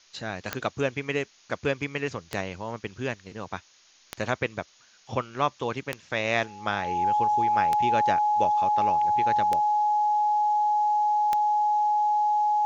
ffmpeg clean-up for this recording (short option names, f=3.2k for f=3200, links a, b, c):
-af "adeclick=t=4,bandreject=f=840:w=30,afftdn=nr=14:nf=-58"